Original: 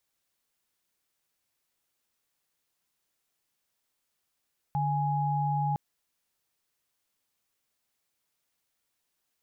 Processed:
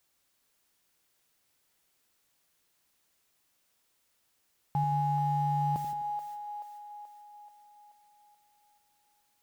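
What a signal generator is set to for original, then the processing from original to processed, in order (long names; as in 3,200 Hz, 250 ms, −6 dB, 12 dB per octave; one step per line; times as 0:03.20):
held notes D3/G#5 sine, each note −28 dBFS 1.01 s
converter with a step at zero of −47 dBFS
noise gate −46 dBFS, range −21 dB
on a send: echo with a time of its own for lows and highs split 510 Hz, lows 85 ms, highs 431 ms, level −8 dB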